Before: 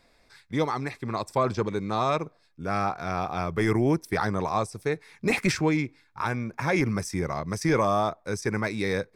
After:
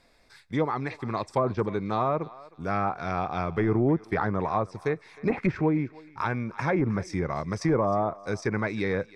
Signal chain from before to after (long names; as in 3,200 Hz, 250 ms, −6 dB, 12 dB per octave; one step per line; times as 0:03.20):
treble cut that deepens with the level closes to 1,000 Hz, closed at −19.5 dBFS
feedback echo with a high-pass in the loop 311 ms, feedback 29%, high-pass 680 Hz, level −17.5 dB